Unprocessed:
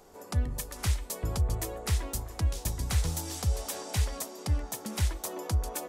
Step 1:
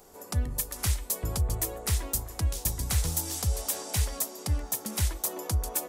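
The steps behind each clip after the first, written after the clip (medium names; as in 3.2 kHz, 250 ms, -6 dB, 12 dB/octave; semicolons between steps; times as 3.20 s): treble shelf 8.2 kHz +12 dB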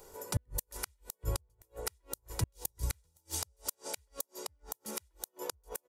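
comb 2.1 ms, depth 53%; inverted gate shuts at -18 dBFS, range -42 dB; trim -1.5 dB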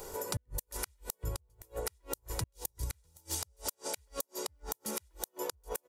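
compression 6:1, threshold -44 dBFS, peak gain reduction 17.5 dB; trim +9.5 dB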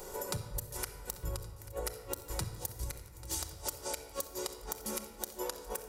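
shuffle delay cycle 1120 ms, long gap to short 3:1, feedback 55%, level -18 dB; simulated room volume 2200 m³, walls mixed, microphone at 0.99 m; trim -1 dB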